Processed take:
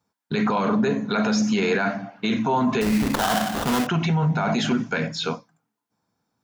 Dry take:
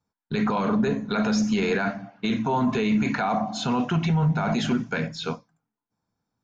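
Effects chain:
high-pass filter 170 Hz 6 dB per octave
in parallel at +1.5 dB: brickwall limiter −26 dBFS, peak gain reduction 11.5 dB
0:02.81–0:03.87: on the sum: sample-rate reduction 2,300 Hz, jitter 20%

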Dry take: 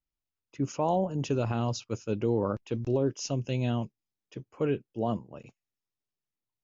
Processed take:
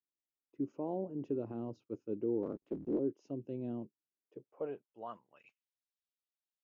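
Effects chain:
0:02.43–0:03.00: sub-harmonics by changed cycles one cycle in 3, inverted
band-pass filter sweep 330 Hz → 3,800 Hz, 0:04.18–0:05.79
level −3 dB

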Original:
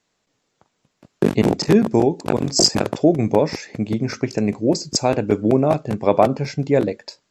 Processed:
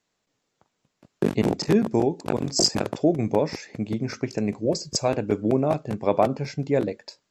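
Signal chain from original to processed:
0:04.65–0:05.08: comb filter 1.8 ms, depth 52%
level −5.5 dB

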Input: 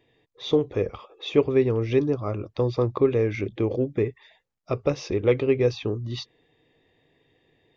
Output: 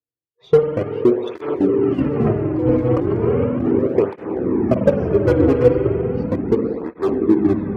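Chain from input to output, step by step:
transient designer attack +6 dB, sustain −5 dB
dynamic equaliser 610 Hz, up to +6 dB, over −31 dBFS, Q 1.3
harmonic generator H 3 −14 dB, 6 −27 dB, 8 −33 dB, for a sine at −10.5 dBFS
spring reverb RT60 3.2 s, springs 48 ms, chirp 40 ms, DRR 3 dB
noise reduction from a noise print of the clip's start 28 dB
0:01.26–0:03.86: compressor whose output falls as the input rises −23 dBFS, ratio −1
tilt shelving filter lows +8 dB, about 1,400 Hz
delay with pitch and tempo change per echo 381 ms, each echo −4 semitones, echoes 3
through-zero flanger with one copy inverted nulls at 0.36 Hz, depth 5.4 ms
level −2 dB

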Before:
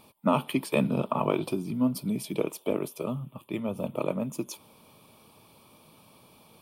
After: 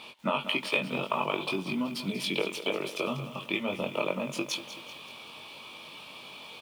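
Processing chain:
running median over 3 samples
parametric band 3,000 Hz +14.5 dB 1.6 octaves
downward compressor 6 to 1, threshold −31 dBFS, peak gain reduction 15.5 dB
high-pass filter 350 Hz 6 dB per octave
high-shelf EQ 5,200 Hz −7.5 dB
double-tracking delay 21 ms −3.5 dB
feedback echo at a low word length 190 ms, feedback 55%, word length 9 bits, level −12 dB
level +5.5 dB

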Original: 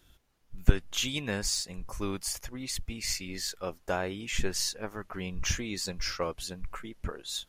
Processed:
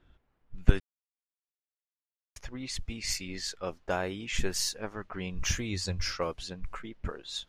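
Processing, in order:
low-pass that shuts in the quiet parts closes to 1,900 Hz, open at −27 dBFS
0:00.80–0:02.36: silence
0:05.56–0:06.05: parametric band 91 Hz +15 dB 0.59 octaves

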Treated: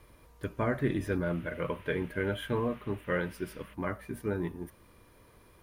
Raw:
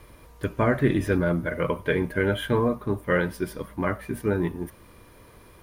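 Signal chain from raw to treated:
0:01.23–0:03.73: noise in a band 1,200–3,000 Hz −50 dBFS
level −8 dB

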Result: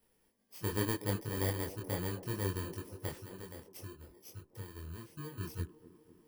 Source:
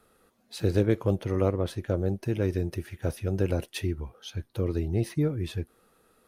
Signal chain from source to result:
samples in bit-reversed order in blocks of 32 samples
0:03.18–0:05.38: downward compressor 3 to 1, threshold −37 dBFS, peak gain reduction 13 dB
multi-voice chorus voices 4, 0.69 Hz, delay 24 ms, depth 4.6 ms
delay with a band-pass on its return 247 ms, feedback 67%, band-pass 410 Hz, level −11.5 dB
level −6.5 dB

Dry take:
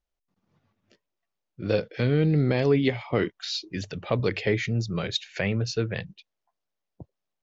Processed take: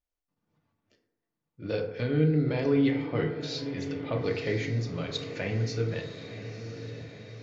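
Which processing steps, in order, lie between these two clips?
feedback delay with all-pass diffusion 995 ms, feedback 55%, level −10.5 dB
convolution reverb RT60 0.90 s, pre-delay 3 ms, DRR 1.5 dB
level −7.5 dB

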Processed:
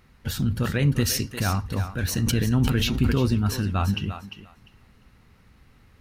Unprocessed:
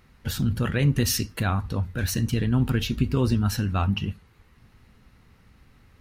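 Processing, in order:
feedback echo with a high-pass in the loop 349 ms, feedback 17%, high-pass 380 Hz, level −9 dB
0:02.12–0:03.26: level that may fall only so fast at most 31 dB per second

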